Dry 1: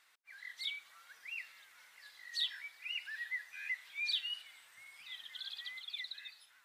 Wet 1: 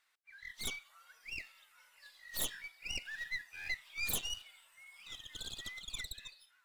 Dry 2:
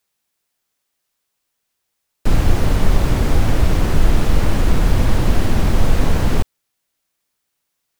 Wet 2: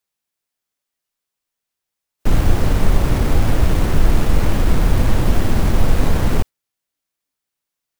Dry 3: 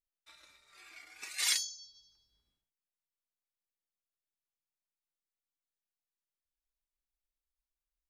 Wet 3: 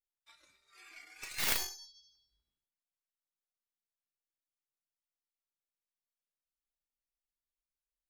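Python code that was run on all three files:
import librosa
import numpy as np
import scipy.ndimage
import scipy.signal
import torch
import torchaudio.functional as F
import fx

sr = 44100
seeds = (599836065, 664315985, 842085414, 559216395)

y = fx.tracing_dist(x, sr, depth_ms=0.2)
y = fx.noise_reduce_blind(y, sr, reduce_db=8)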